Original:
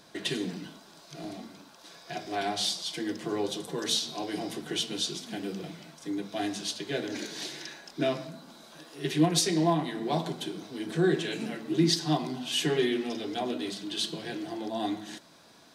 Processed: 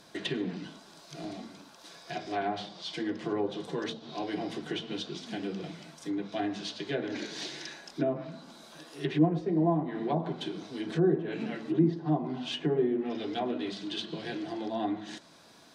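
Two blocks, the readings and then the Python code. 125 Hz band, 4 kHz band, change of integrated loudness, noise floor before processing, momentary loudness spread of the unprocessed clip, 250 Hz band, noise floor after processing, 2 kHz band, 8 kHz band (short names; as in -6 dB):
0.0 dB, -8.0 dB, -2.0 dB, -55 dBFS, 17 LU, 0.0 dB, -55 dBFS, -3.5 dB, -15.0 dB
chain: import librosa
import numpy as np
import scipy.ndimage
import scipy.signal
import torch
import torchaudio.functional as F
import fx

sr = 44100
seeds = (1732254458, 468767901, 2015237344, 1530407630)

y = fx.env_lowpass_down(x, sr, base_hz=770.0, full_db=-24.0)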